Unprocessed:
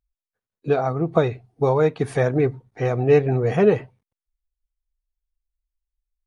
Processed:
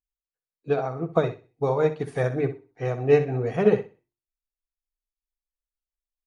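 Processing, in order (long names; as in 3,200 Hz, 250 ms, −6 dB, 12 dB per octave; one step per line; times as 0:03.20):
mains-hum notches 50/100/150/200/250/300/350/400 Hz
on a send: repeating echo 63 ms, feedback 35%, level −9 dB
on the sum: expander for the loud parts 1.5 to 1, over −37 dBFS
level −1.5 dB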